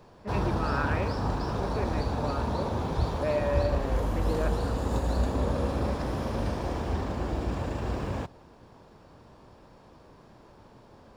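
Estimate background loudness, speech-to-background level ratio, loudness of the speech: -30.5 LUFS, -4.0 dB, -34.5 LUFS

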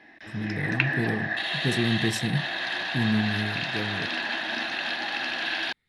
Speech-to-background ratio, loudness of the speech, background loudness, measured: -2.0 dB, -30.0 LUFS, -28.0 LUFS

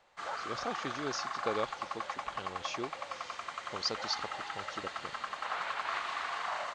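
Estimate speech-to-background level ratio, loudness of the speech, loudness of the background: -1.5 dB, -40.0 LUFS, -38.5 LUFS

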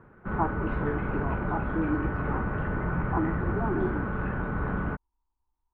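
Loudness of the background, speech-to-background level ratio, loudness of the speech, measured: -31.0 LUFS, -3.0 dB, -34.0 LUFS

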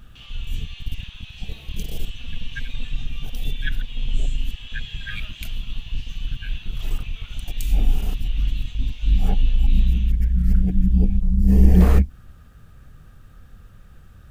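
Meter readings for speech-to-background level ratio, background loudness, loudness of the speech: 17.0 dB, -41.0 LUFS, -24.0 LUFS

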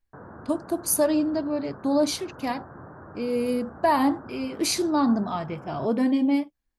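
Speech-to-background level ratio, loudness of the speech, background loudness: 19.0 dB, -25.5 LUFS, -44.5 LUFS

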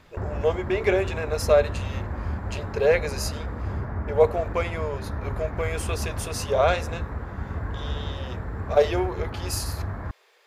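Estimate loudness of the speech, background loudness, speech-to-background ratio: -25.5 LUFS, -32.5 LUFS, 7.0 dB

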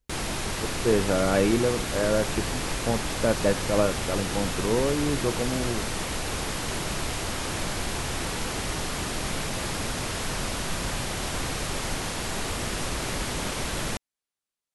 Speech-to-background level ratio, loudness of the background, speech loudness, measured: 3.0 dB, -30.0 LUFS, -27.0 LUFS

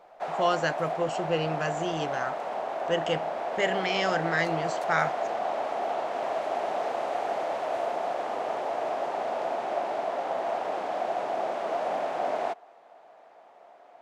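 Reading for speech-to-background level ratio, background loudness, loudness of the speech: 1.0 dB, -31.0 LUFS, -30.0 LUFS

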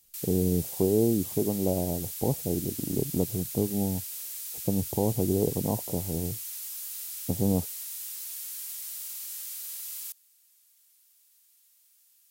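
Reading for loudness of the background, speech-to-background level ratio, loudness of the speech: -35.0 LUFS, 5.5 dB, -29.5 LUFS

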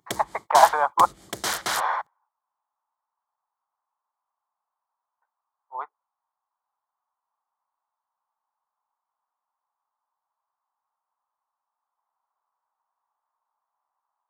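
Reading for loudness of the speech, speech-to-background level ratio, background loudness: -22.0 LUFS, 8.0 dB, -30.0 LUFS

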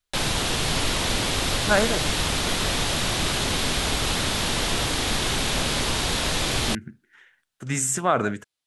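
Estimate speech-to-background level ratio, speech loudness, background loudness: -2.0 dB, -25.5 LUFS, -23.5 LUFS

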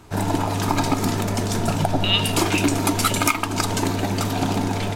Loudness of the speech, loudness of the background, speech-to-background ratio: -24.5 LUFS, -22.0 LUFS, -2.5 dB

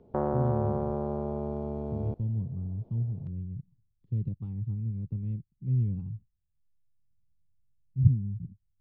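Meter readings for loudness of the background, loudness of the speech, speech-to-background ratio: -32.5 LUFS, -32.5 LUFS, 0.0 dB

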